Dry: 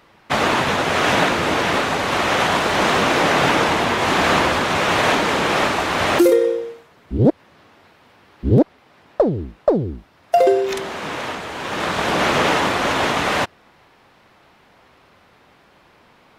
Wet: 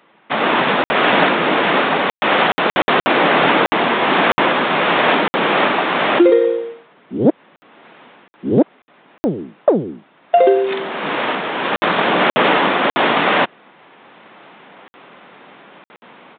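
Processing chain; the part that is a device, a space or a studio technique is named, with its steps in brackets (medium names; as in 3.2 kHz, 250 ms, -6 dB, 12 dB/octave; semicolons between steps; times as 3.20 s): call with lost packets (high-pass 170 Hz 24 dB/octave; resampled via 8 kHz; level rider; lost packets of 60 ms random); trim -1 dB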